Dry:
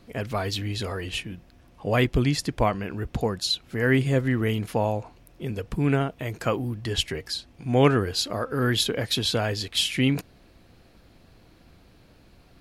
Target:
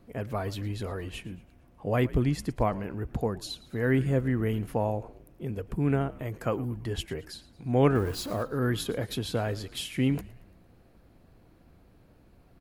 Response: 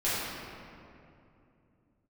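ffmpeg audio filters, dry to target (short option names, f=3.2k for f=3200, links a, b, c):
-filter_complex "[0:a]asettb=1/sr,asplit=3[a][b][c];[a]atrim=end=7.954[d];[b]atrim=start=7.95:end=8.43,asetpts=PTS-STARTPTS,afade=t=in:d=0.004:c=qsin,afade=t=out:st=0.476:d=0.004:c=qsin,aeval=exprs='val(0)+0.5*0.0282*sgn(val(0))':c=same[e];[c]atrim=start=8.426[f];[d][e]acrossfade=d=0.004:c1=hsin:c2=qsin[g];[g][f]acrossfade=d=0.004:c1=qsin:c2=hsin,equalizer=f=4.3k:t=o:w=2.3:g=-10.5,asplit=5[h][i][j][k][l];[i]adelay=113,afreqshift=-80,volume=-19dB[m];[j]adelay=226,afreqshift=-160,volume=-25.4dB[n];[k]adelay=339,afreqshift=-240,volume=-31.8dB[o];[l]adelay=452,afreqshift=-320,volume=-38.1dB[p];[h][m][n][o][p]amix=inputs=5:normalize=0,volume=-3dB"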